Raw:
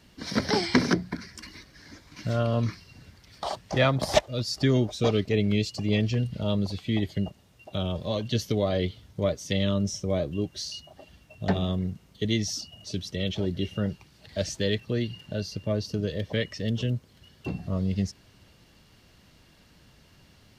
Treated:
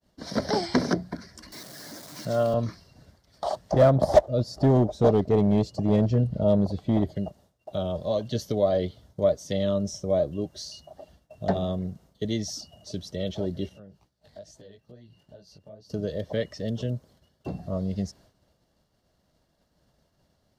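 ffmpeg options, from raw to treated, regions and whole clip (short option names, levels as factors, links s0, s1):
-filter_complex "[0:a]asettb=1/sr,asplit=3[s0][s1][s2];[s0]atrim=end=1.524[s3];[s1]atrim=start=1.52:end=2.54,asetpts=PTS-STARTPTS,afade=t=in:d=0.004:c=qsin,afade=t=out:st=1.016:d=0.004:c=qsin,aeval=exprs='val(0)+0.5*0.0106*sgn(val(0))':c=same,highpass=f=120:w=0.5412,highpass=f=120:w=1.3066,highshelf=f=4100:g=7[s4];[s2]atrim=start=2.536[s5];[s3][s4]acrossfade=d=0.004:c1=hsin:c2=qsin[s6];[s6][s5]acrossfade=d=0.004:c1=qsin:c2=hsin,asettb=1/sr,asplit=3[s7][s8][s9];[s7]atrim=end=3.724[s10];[s8]atrim=start=3.72:end=7.16,asetpts=PTS-STARTPTS,afade=t=in:d=0.004:c=qsin,afade=t=out:st=3.436:d=0.004:c=qsin,tiltshelf=f=1300:g=6.5,asoftclip=type=hard:threshold=0.211[s11];[s9]atrim=start=7.156[s12];[s10][s11]acrossfade=d=0.004:c1=hsin:c2=qsin[s13];[s13][s12]acrossfade=d=0.004:c1=qsin:c2=hsin,asettb=1/sr,asplit=3[s14][s15][s16];[s14]atrim=end=13.694[s17];[s15]atrim=start=13.69:end=15.9,asetpts=PTS-STARTPTS,afade=t=in:d=0.004:c=qsin,afade=t=out:st=2.206:d=0.004:c=qsin,acompressor=threshold=0.00891:ratio=12:attack=3.2:release=140:knee=1:detection=peak,flanger=delay=15.5:depth=5.7:speed=2.3[s18];[s16]atrim=start=15.896[s19];[s17][s18]acrossfade=d=0.004:c1=hsin:c2=qsin[s20];[s20][s19]acrossfade=d=0.004:c1=qsin:c2=hsin,equalizer=f=100:t=o:w=0.67:g=-8,equalizer=f=630:t=o:w=0.67:g=9,equalizer=f=2500:t=o:w=0.67:g=-10,agate=range=0.0224:threshold=0.00355:ratio=3:detection=peak,equalizer=f=97:w=1.1:g=5.5,volume=0.75"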